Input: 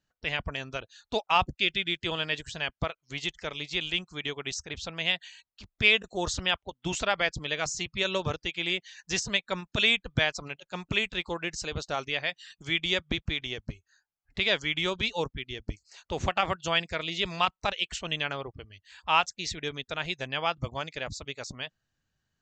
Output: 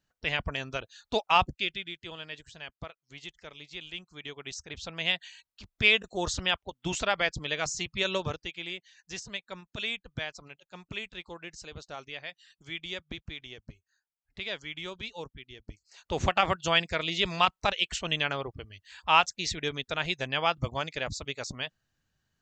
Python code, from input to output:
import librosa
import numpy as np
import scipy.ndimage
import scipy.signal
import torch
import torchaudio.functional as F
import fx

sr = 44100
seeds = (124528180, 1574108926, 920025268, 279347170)

y = fx.gain(x, sr, db=fx.line((1.39, 1.0), (1.95, -11.0), (3.89, -11.0), (5.1, -0.5), (8.14, -0.5), (8.81, -10.0), (15.69, -10.0), (16.16, 2.0)))